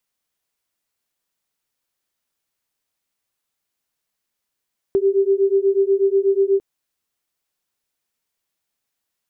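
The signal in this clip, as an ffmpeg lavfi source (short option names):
-f lavfi -i "aevalsrc='0.141*(sin(2*PI*388*t)+sin(2*PI*396.2*t))':d=1.65:s=44100"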